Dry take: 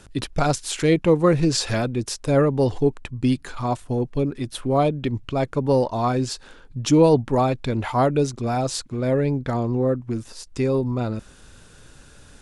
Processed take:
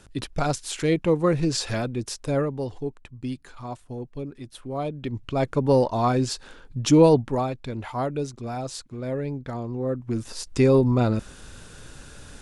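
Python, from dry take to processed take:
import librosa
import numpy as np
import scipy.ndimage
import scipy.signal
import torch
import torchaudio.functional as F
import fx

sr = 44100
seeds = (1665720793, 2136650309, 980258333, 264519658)

y = fx.gain(x, sr, db=fx.line((2.25, -4.0), (2.68, -11.0), (4.74, -11.0), (5.47, 0.0), (7.07, 0.0), (7.54, -8.0), (9.77, -8.0), (10.35, 4.0)))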